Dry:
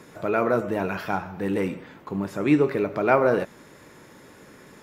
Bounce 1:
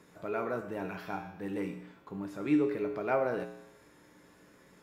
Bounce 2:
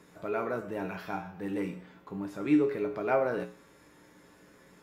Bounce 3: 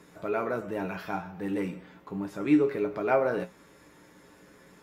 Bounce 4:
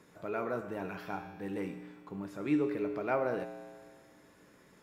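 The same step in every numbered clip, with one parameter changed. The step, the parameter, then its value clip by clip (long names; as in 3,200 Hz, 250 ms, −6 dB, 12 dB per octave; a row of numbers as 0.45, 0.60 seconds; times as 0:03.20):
tuned comb filter, decay: 0.88, 0.42, 0.19, 1.9 seconds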